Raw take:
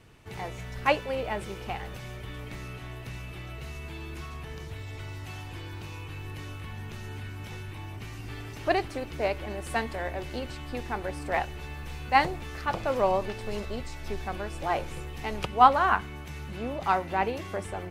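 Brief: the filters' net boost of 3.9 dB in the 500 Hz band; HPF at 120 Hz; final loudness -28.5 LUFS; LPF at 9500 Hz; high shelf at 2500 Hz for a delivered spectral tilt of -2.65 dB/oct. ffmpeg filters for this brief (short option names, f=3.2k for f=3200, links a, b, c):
-af "highpass=120,lowpass=9.5k,equalizer=f=500:t=o:g=4.5,highshelf=f=2.5k:g=5,volume=-1.5dB"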